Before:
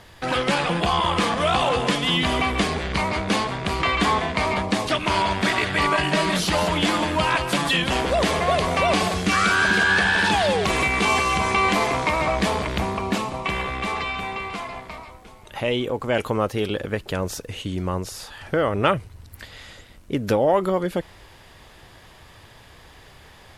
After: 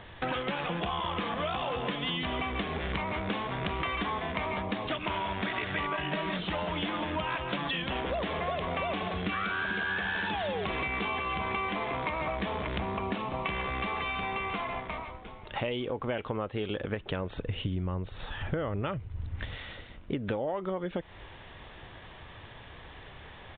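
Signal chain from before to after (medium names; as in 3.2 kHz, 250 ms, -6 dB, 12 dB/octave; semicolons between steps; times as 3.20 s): 17.35–19.55 s: bass shelf 190 Hz +10.5 dB; compression 10:1, threshold -29 dBFS, peak gain reduction 17 dB; resampled via 8 kHz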